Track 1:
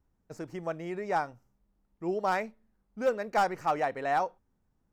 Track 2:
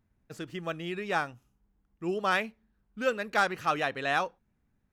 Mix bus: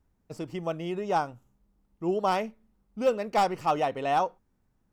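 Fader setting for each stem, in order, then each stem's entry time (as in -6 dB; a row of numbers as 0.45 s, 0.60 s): +2.0 dB, -6.0 dB; 0.00 s, 0.00 s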